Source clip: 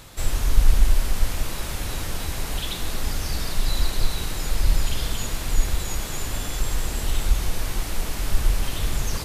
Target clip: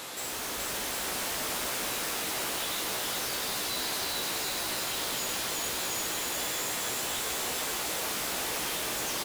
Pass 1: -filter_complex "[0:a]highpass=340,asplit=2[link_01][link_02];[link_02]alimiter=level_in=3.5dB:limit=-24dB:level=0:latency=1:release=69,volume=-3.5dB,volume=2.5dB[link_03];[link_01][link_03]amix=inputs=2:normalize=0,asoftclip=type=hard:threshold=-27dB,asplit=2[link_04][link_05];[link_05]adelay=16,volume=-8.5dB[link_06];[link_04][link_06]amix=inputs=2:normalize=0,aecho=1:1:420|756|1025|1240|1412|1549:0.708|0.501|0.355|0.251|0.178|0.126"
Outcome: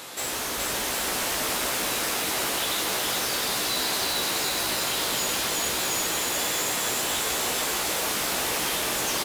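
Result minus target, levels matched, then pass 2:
hard clipping: distortion −6 dB
-filter_complex "[0:a]highpass=340,asplit=2[link_01][link_02];[link_02]alimiter=level_in=3.5dB:limit=-24dB:level=0:latency=1:release=69,volume=-3.5dB,volume=2.5dB[link_03];[link_01][link_03]amix=inputs=2:normalize=0,asoftclip=type=hard:threshold=-35dB,asplit=2[link_04][link_05];[link_05]adelay=16,volume=-8.5dB[link_06];[link_04][link_06]amix=inputs=2:normalize=0,aecho=1:1:420|756|1025|1240|1412|1549:0.708|0.501|0.355|0.251|0.178|0.126"

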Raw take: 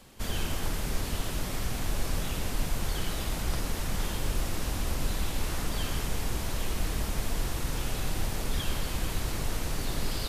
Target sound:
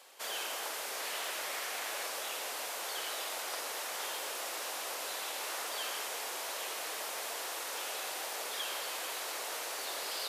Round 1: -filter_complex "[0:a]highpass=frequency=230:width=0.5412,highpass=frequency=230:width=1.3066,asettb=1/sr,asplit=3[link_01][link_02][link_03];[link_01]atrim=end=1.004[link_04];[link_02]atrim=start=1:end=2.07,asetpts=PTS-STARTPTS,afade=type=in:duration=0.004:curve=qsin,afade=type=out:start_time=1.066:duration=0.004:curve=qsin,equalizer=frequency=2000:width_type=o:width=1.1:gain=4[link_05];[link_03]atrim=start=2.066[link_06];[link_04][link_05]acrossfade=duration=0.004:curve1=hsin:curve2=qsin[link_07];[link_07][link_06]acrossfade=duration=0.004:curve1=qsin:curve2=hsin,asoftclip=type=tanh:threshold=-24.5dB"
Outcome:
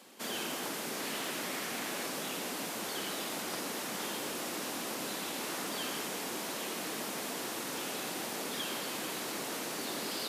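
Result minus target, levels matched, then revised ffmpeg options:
250 Hz band +16.5 dB
-filter_complex "[0:a]highpass=frequency=500:width=0.5412,highpass=frequency=500:width=1.3066,asettb=1/sr,asplit=3[link_01][link_02][link_03];[link_01]atrim=end=1.004[link_04];[link_02]atrim=start=1:end=2.07,asetpts=PTS-STARTPTS,afade=type=in:duration=0.004:curve=qsin,afade=type=out:start_time=1.066:duration=0.004:curve=qsin,equalizer=frequency=2000:width_type=o:width=1.1:gain=4[link_05];[link_03]atrim=start=2.066[link_06];[link_04][link_05]acrossfade=duration=0.004:curve1=hsin:curve2=qsin[link_07];[link_07][link_06]acrossfade=duration=0.004:curve1=qsin:curve2=hsin,asoftclip=type=tanh:threshold=-24.5dB"

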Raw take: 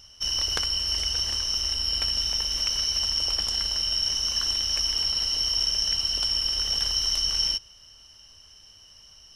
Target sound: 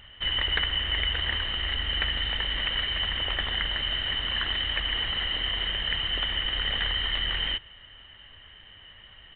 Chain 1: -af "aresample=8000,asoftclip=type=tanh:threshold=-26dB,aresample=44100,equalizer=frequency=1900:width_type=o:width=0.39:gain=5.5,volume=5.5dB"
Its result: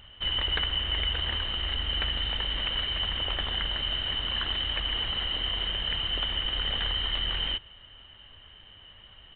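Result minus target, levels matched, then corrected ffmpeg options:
2,000 Hz band −4.0 dB
-af "aresample=8000,asoftclip=type=tanh:threshold=-26dB,aresample=44100,equalizer=frequency=1900:width_type=o:width=0.39:gain=14.5,volume=5.5dB"

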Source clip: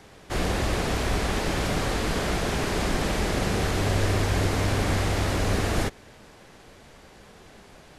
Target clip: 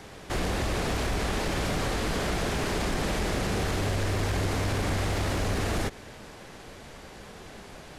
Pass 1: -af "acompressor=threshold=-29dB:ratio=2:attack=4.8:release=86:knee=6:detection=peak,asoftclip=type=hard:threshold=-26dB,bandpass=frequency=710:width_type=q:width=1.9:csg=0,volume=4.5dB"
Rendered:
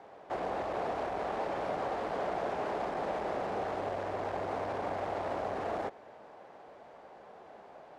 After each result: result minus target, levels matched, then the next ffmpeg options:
1,000 Hz band +6.5 dB; downward compressor: peak gain reduction −3 dB
-af "acompressor=threshold=-29dB:ratio=2:attack=4.8:release=86:knee=6:detection=peak,asoftclip=type=hard:threshold=-26dB,volume=4.5dB"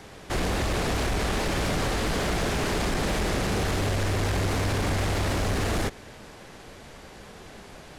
downward compressor: peak gain reduction −3 dB
-af "acompressor=threshold=-35dB:ratio=2:attack=4.8:release=86:knee=6:detection=peak,asoftclip=type=hard:threshold=-26dB,volume=4.5dB"

